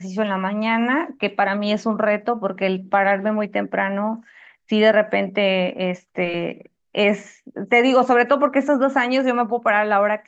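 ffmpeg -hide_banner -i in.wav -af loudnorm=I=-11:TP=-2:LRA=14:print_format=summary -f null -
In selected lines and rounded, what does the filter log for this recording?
Input Integrated:    -19.2 LUFS
Input True Peak:      -3.5 dBTP
Input LRA:             3.3 LU
Input Threshold:     -29.5 LUFS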